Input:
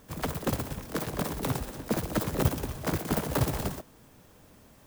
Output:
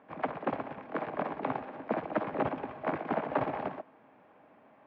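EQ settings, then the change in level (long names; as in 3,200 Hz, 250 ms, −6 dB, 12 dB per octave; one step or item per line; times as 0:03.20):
high-frequency loss of the air 73 metres
loudspeaker in its box 240–2,600 Hz, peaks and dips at 270 Hz +4 dB, 630 Hz +7 dB, 1,100 Hz +5 dB, 1,600 Hz +3 dB, 2,300 Hz +4 dB
parametric band 810 Hz +8 dB 0.3 octaves
−4.0 dB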